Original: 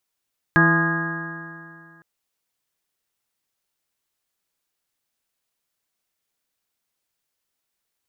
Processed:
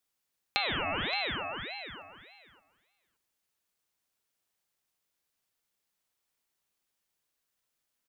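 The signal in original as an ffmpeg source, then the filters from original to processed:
-f lavfi -i "aevalsrc='0.141*pow(10,-3*t/2.32)*sin(2*PI*164.25*t)+0.112*pow(10,-3*t/2.32)*sin(2*PI*329.96*t)+0.0178*pow(10,-3*t/2.32)*sin(2*PI*498.6*t)+0.0376*pow(10,-3*t/2.32)*sin(2*PI*671.56*t)+0.0447*pow(10,-3*t/2.32)*sin(2*PI*850.19*t)+0.0501*pow(10,-3*t/2.32)*sin(2*PI*1035.77*t)+0.0891*pow(10,-3*t/2.32)*sin(2*PI*1229.49*t)+0.02*pow(10,-3*t/2.32)*sin(2*PI*1432.43*t)+0.2*pow(10,-3*t/2.32)*sin(2*PI*1645.59*t)+0.0251*pow(10,-3*t/2.32)*sin(2*PI*1869.89*t)':d=1.46:s=44100"
-filter_complex "[0:a]acompressor=threshold=0.0562:ratio=10,asplit=2[s0][s1];[s1]adelay=573,lowpass=f=2000:p=1,volume=0.299,asplit=2[s2][s3];[s3]adelay=573,lowpass=f=2000:p=1,volume=0.15[s4];[s2][s4]amix=inputs=2:normalize=0[s5];[s0][s5]amix=inputs=2:normalize=0,aeval=exprs='val(0)*sin(2*PI*1700*n/s+1700*0.45/1.7*sin(2*PI*1.7*n/s))':c=same"

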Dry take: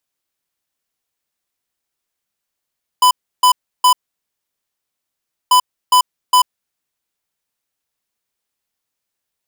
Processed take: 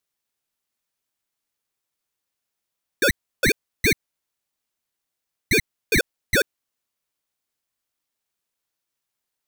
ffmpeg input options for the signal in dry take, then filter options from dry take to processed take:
-f lavfi -i "aevalsrc='0.335*(2*lt(mod(1000*t,1),0.5)-1)*clip(min(mod(mod(t,2.49),0.41),0.09-mod(mod(t,2.49),0.41))/0.005,0,1)*lt(mod(t,2.49),1.23)':d=4.98:s=44100"
-af "asoftclip=type=tanh:threshold=0.211,aeval=exprs='val(0)*sin(2*PI*940*n/s+940*0.55/5.4*sin(2*PI*5.4*n/s))':c=same"

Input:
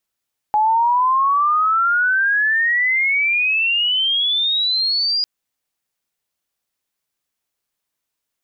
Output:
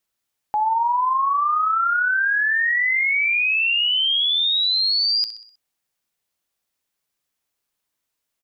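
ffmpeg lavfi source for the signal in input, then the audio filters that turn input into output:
-f lavfi -i "aevalsrc='pow(10,(-12.5-3.5*t/4.7)/20)*sin(2*PI*840*4.7/log(4900/840)*(exp(log(4900/840)*t/4.7)-1))':d=4.7:s=44100"
-filter_complex "[0:a]alimiter=limit=0.141:level=0:latency=1,asplit=2[s0][s1];[s1]aecho=0:1:63|126|189|252|315:0.237|0.121|0.0617|0.0315|0.016[s2];[s0][s2]amix=inputs=2:normalize=0"

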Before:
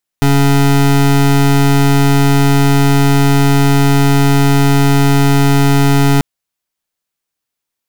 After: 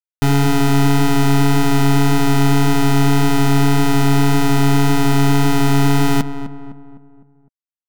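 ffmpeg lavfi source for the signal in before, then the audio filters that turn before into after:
-f lavfi -i "aevalsrc='0.355*(2*lt(mod(140*t,1),0.25)-1)':d=5.99:s=44100"
-filter_complex "[0:a]flanger=delay=2.7:depth=6.2:regen=-62:speed=1.8:shape=triangular,aeval=exprs='val(0)*gte(abs(val(0)),0.0266)':c=same,asplit=2[s0][s1];[s1]adelay=254,lowpass=f=1600:p=1,volume=0.282,asplit=2[s2][s3];[s3]adelay=254,lowpass=f=1600:p=1,volume=0.47,asplit=2[s4][s5];[s5]adelay=254,lowpass=f=1600:p=1,volume=0.47,asplit=2[s6][s7];[s7]adelay=254,lowpass=f=1600:p=1,volume=0.47,asplit=2[s8][s9];[s9]adelay=254,lowpass=f=1600:p=1,volume=0.47[s10];[s0][s2][s4][s6][s8][s10]amix=inputs=6:normalize=0"

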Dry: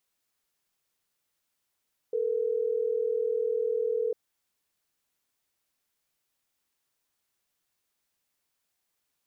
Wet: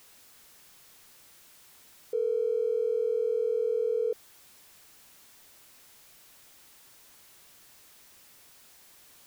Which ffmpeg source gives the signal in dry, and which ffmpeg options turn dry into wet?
-f lavfi -i "aevalsrc='0.0398*(sin(2*PI*440*t)+sin(2*PI*480*t))*clip(min(mod(t,6),2-mod(t,6))/0.005,0,1)':d=3.12:s=44100"
-af "aeval=exprs='val(0)+0.5*0.00316*sgn(val(0))':c=same"

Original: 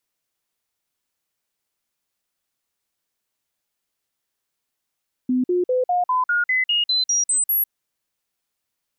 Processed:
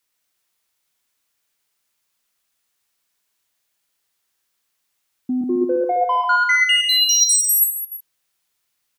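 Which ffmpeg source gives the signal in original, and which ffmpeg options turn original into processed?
-f lavfi -i "aevalsrc='0.15*clip(min(mod(t,0.2),0.15-mod(t,0.2))/0.005,0,1)*sin(2*PI*253*pow(2,floor(t/0.2)/2)*mod(t,0.2))':d=2.4:s=44100"
-filter_complex "[0:a]acrossover=split=1000[s0][s1];[s1]acontrast=34[s2];[s0][s2]amix=inputs=2:normalize=0,asoftclip=type=tanh:threshold=0.224,aecho=1:1:120|210|277.5|328.1|366.1:0.631|0.398|0.251|0.158|0.1"

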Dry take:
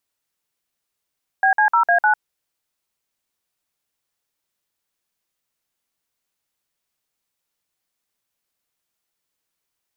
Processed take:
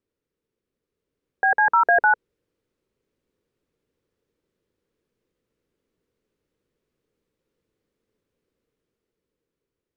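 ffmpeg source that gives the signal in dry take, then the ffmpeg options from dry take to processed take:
-f lavfi -i "aevalsrc='0.178*clip(min(mod(t,0.152),0.1-mod(t,0.152))/0.002,0,1)*(eq(floor(t/0.152),0)*(sin(2*PI*770*mod(t,0.152))+sin(2*PI*1633*mod(t,0.152)))+eq(floor(t/0.152),1)*(sin(2*PI*852*mod(t,0.152))+sin(2*PI*1633*mod(t,0.152)))+eq(floor(t/0.152),2)*(sin(2*PI*941*mod(t,0.152))+sin(2*PI*1336*mod(t,0.152)))+eq(floor(t/0.152),3)*(sin(2*PI*697*mod(t,0.152))+sin(2*PI*1633*mod(t,0.152)))+eq(floor(t/0.152),4)*(sin(2*PI*852*mod(t,0.152))+sin(2*PI*1477*mod(t,0.152))))':d=0.76:s=44100"
-af "lowpass=f=1100:p=1,lowshelf=f=580:t=q:w=3:g=7.5,dynaudnorm=f=240:g=11:m=2"

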